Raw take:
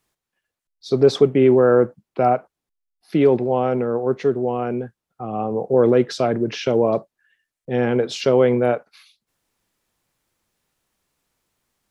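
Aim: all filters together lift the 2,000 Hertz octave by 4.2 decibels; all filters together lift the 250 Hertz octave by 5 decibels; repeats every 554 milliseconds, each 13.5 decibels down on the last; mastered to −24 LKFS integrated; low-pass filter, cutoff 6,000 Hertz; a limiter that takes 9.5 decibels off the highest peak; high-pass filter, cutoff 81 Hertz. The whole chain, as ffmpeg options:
ffmpeg -i in.wav -af "highpass=81,lowpass=6000,equalizer=frequency=250:width_type=o:gain=6,equalizer=frequency=2000:width_type=o:gain=5.5,alimiter=limit=-10dB:level=0:latency=1,aecho=1:1:554|1108:0.211|0.0444,volume=-3dB" out.wav

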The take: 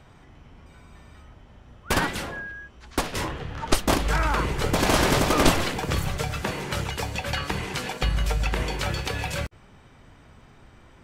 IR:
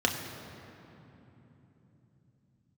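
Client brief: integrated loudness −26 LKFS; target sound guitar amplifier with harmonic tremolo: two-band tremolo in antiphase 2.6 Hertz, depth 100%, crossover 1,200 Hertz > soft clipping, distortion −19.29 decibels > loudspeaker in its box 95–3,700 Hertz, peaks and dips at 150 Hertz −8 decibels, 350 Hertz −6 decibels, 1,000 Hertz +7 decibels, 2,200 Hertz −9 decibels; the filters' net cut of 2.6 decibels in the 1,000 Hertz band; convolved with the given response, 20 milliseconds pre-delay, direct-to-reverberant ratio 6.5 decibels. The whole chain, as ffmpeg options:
-filter_complex "[0:a]equalizer=frequency=1000:width_type=o:gain=-7,asplit=2[link_01][link_02];[1:a]atrim=start_sample=2205,adelay=20[link_03];[link_02][link_03]afir=irnorm=-1:irlink=0,volume=-17.5dB[link_04];[link_01][link_04]amix=inputs=2:normalize=0,acrossover=split=1200[link_05][link_06];[link_05]aeval=exprs='val(0)*(1-1/2+1/2*cos(2*PI*2.6*n/s))':channel_layout=same[link_07];[link_06]aeval=exprs='val(0)*(1-1/2-1/2*cos(2*PI*2.6*n/s))':channel_layout=same[link_08];[link_07][link_08]amix=inputs=2:normalize=0,asoftclip=threshold=-16.5dB,highpass=95,equalizer=frequency=150:width_type=q:width=4:gain=-8,equalizer=frequency=350:width_type=q:width=4:gain=-6,equalizer=frequency=1000:width_type=q:width=4:gain=7,equalizer=frequency=2200:width_type=q:width=4:gain=-9,lowpass=frequency=3700:width=0.5412,lowpass=frequency=3700:width=1.3066,volume=8.5dB"

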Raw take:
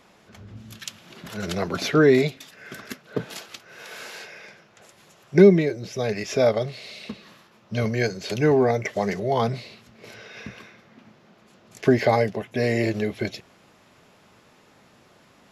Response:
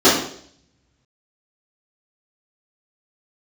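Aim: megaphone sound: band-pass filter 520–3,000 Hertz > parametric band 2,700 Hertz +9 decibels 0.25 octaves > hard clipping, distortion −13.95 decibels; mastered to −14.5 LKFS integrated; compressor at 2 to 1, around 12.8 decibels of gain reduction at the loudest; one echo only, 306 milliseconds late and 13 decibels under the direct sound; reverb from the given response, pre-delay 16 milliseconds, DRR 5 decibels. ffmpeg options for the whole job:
-filter_complex "[0:a]acompressor=threshold=-32dB:ratio=2,aecho=1:1:306:0.224,asplit=2[link_01][link_02];[1:a]atrim=start_sample=2205,adelay=16[link_03];[link_02][link_03]afir=irnorm=-1:irlink=0,volume=-31.5dB[link_04];[link_01][link_04]amix=inputs=2:normalize=0,highpass=520,lowpass=3000,equalizer=frequency=2700:width_type=o:width=0.25:gain=9,asoftclip=type=hard:threshold=-25.5dB,volume=21dB"

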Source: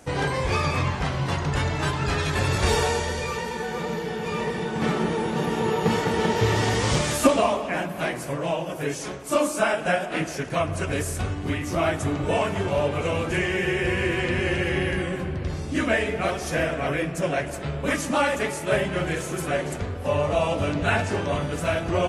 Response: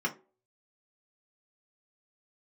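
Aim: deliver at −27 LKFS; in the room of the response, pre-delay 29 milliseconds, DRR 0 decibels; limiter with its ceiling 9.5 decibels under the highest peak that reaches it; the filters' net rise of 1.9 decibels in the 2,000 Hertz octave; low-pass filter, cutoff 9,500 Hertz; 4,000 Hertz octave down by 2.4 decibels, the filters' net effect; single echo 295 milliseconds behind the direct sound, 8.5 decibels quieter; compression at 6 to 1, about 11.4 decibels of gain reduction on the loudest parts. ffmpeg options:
-filter_complex "[0:a]lowpass=9500,equalizer=frequency=2000:width_type=o:gain=3.5,equalizer=frequency=4000:width_type=o:gain=-5,acompressor=threshold=-24dB:ratio=6,alimiter=limit=-23dB:level=0:latency=1,aecho=1:1:295:0.376,asplit=2[link_01][link_02];[1:a]atrim=start_sample=2205,adelay=29[link_03];[link_02][link_03]afir=irnorm=-1:irlink=0,volume=-7dB[link_04];[link_01][link_04]amix=inputs=2:normalize=0,volume=1dB"

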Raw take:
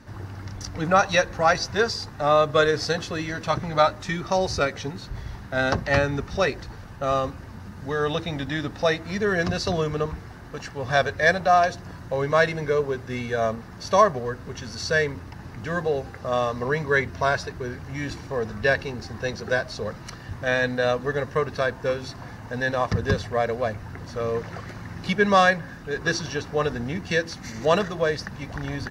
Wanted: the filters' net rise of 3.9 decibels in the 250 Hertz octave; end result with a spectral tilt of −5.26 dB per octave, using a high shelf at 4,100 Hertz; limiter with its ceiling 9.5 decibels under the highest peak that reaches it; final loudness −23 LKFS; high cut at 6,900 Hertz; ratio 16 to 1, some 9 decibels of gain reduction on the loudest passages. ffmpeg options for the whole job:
ffmpeg -i in.wav -af "lowpass=6900,equalizer=frequency=250:width_type=o:gain=5.5,highshelf=frequency=4100:gain=-6,acompressor=threshold=-21dB:ratio=16,volume=8.5dB,alimiter=limit=-12.5dB:level=0:latency=1" out.wav

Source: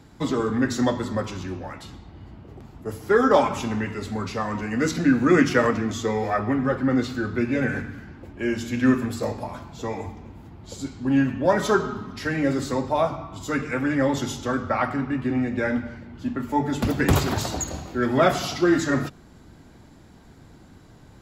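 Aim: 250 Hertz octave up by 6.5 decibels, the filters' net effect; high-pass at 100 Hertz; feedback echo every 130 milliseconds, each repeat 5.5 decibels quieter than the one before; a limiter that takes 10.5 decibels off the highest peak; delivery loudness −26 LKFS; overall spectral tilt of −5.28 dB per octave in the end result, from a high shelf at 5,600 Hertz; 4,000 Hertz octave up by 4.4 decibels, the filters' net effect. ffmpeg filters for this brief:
ffmpeg -i in.wav -af "highpass=100,equalizer=frequency=250:width_type=o:gain=7.5,equalizer=frequency=4000:width_type=o:gain=3.5,highshelf=frequency=5600:gain=5,alimiter=limit=-11.5dB:level=0:latency=1,aecho=1:1:130|260|390|520|650|780|910:0.531|0.281|0.149|0.079|0.0419|0.0222|0.0118,volume=-5.5dB" out.wav

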